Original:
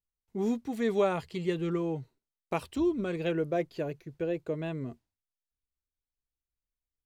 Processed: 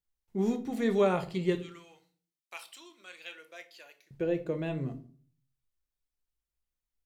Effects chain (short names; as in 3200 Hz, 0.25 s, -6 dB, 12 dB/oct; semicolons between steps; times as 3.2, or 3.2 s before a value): 1.55–4.11 Bessel high-pass 2600 Hz, order 2; reverb RT60 0.45 s, pre-delay 6 ms, DRR 6.5 dB